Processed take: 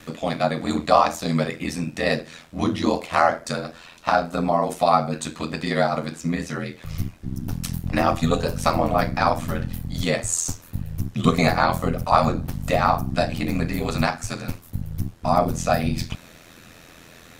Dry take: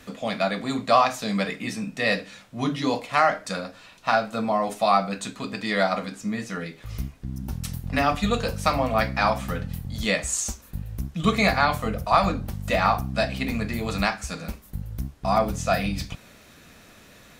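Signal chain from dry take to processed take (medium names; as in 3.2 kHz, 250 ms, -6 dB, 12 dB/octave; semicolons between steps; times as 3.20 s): dynamic bell 2.6 kHz, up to -7 dB, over -37 dBFS, Q 0.72; ring modulator 42 Hz; trim +6.5 dB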